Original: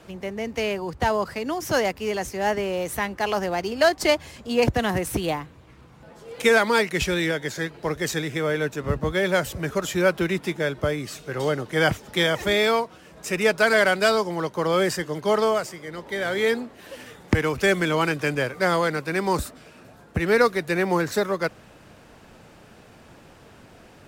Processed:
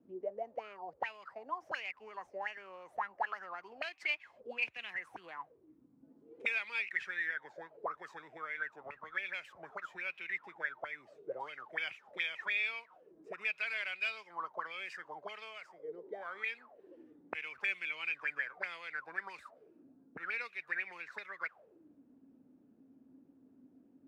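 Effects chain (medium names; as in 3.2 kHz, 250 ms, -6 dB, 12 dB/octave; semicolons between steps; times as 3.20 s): auto-wah 240–2500 Hz, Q 13, up, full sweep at -18.5 dBFS; trim +1 dB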